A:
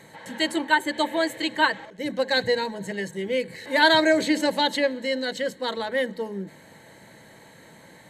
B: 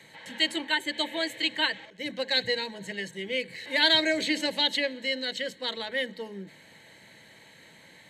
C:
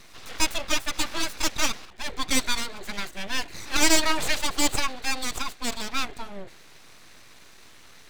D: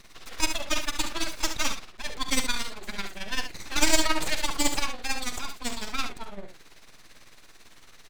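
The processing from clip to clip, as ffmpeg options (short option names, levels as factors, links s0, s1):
-filter_complex "[0:a]acrossover=split=110|920|1900[s0][s1][s2][s3];[s2]acompressor=threshold=0.0126:ratio=6[s4];[s3]equalizer=f=2500:w=0.59:g=12.5[s5];[s0][s1][s4][s5]amix=inputs=4:normalize=0,volume=0.422"
-af "aeval=exprs='abs(val(0))':c=same,volume=1.78"
-af "tremolo=f=18:d=0.72,aecho=1:1:45|70:0.211|0.376"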